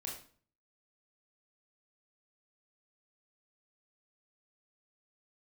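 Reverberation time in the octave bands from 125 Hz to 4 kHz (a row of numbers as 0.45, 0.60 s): 0.65, 0.55, 0.50, 0.45, 0.40, 0.40 s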